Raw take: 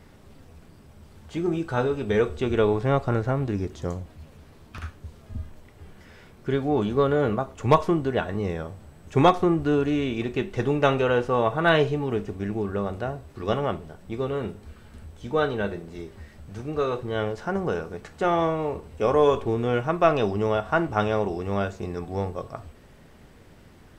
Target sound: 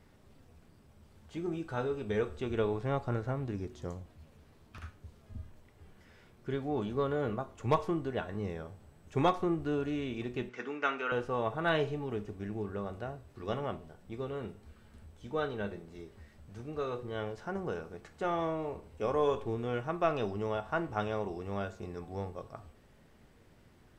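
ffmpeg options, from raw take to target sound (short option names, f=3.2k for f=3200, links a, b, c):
-filter_complex "[0:a]asettb=1/sr,asplit=3[a][b][c];[a]atrim=end=10.494[d];[b]atrim=start=10.49:end=11.12,asetpts=PTS-STARTPTS,afade=t=in:d=0.004:c=qsin,afade=t=out:st=0.626:d=0.004:c=qsin,highpass=f=260:w=0.5412,highpass=f=260:w=1.3066,equalizer=f=350:t=q:w=4:g=-8,equalizer=f=550:t=q:w=4:g=-10,equalizer=f=800:t=q:w=4:g=-5,equalizer=f=1.4k:t=q:w=4:g=8,equalizer=f=2.2k:t=q:w=4:g=6,equalizer=f=3.9k:t=q:w=4:g=-6,lowpass=f=6.6k:w=0.5412,lowpass=f=6.6k:w=1.3066[e];[c]atrim=start=11.116[f];[d][e]acrossfade=d=0.004:c1=hsin:c2=qsin[g];[g][f]acrossfade=d=0.004:c1=qsin:c2=hsin,flanger=delay=8.1:depth=1.5:regen=89:speed=0.29:shape=sinusoidal,volume=-5.5dB"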